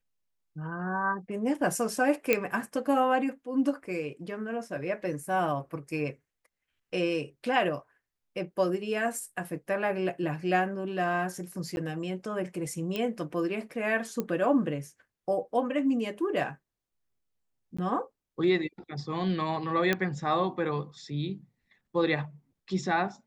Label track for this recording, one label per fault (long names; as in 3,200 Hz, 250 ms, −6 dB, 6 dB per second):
2.330000	2.330000	click −9 dBFS
11.760000	11.770000	drop-out
12.960000	12.960000	click −18 dBFS
14.200000	14.200000	click −17 dBFS
17.770000	17.790000	drop-out 15 ms
19.930000	19.930000	click −12 dBFS